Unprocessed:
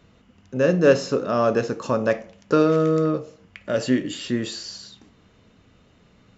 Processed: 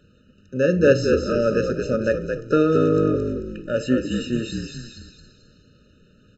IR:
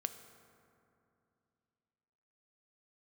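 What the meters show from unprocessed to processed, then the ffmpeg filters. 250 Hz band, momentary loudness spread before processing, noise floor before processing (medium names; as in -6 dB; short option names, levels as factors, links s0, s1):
+1.5 dB, 14 LU, -57 dBFS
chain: -filter_complex "[0:a]asplit=6[s0][s1][s2][s3][s4][s5];[s1]adelay=220,afreqshift=-51,volume=0.531[s6];[s2]adelay=440,afreqshift=-102,volume=0.229[s7];[s3]adelay=660,afreqshift=-153,volume=0.0977[s8];[s4]adelay=880,afreqshift=-204,volume=0.0422[s9];[s5]adelay=1100,afreqshift=-255,volume=0.0182[s10];[s0][s6][s7][s8][s9][s10]amix=inputs=6:normalize=0,afftfilt=real='re*eq(mod(floor(b*sr/1024/610),2),0)':imag='im*eq(mod(floor(b*sr/1024/610),2),0)':win_size=1024:overlap=0.75"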